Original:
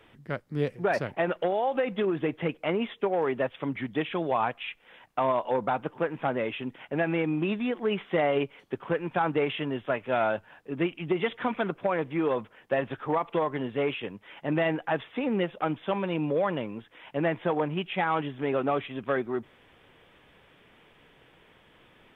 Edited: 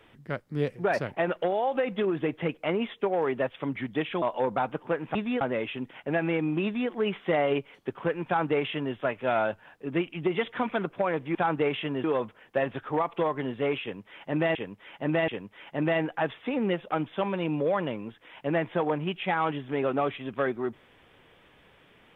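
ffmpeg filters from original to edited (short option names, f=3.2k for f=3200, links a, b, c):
-filter_complex "[0:a]asplit=8[a][b][c][d][e][f][g][h];[a]atrim=end=4.222[i];[b]atrim=start=5.328:end=6.262[j];[c]atrim=start=7.488:end=7.752[k];[d]atrim=start=6.258:end=12.202[l];[e]atrim=start=9.108:end=9.802[m];[f]atrim=start=12.198:end=14.712[n];[g]atrim=start=13.978:end=14.712[o];[h]atrim=start=13.978[p];[i][j]acrossfade=d=0.004:c1=hsin:c2=hsin[q];[q][k]acrossfade=d=0.004:c1=hsin:c2=hsin[r];[r][l]acrossfade=d=0.004:c1=hsin:c2=hsin[s];[s][m]acrossfade=d=0.004:c1=hsin:c2=hsin[t];[t][n]acrossfade=d=0.004:c1=hsin:c2=hsin[u];[u][o]acrossfade=d=0.004:c1=hsin:c2=hsin[v];[v][p]acrossfade=d=0.004:c1=hsin:c2=hsin"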